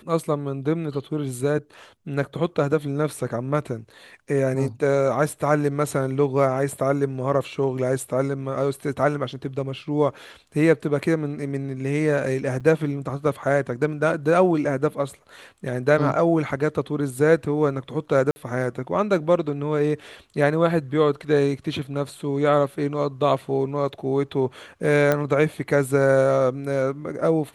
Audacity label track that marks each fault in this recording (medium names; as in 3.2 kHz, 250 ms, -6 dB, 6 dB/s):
12.600000	12.610000	dropout 6.3 ms
18.310000	18.360000	dropout 50 ms
25.120000	25.120000	pop -8 dBFS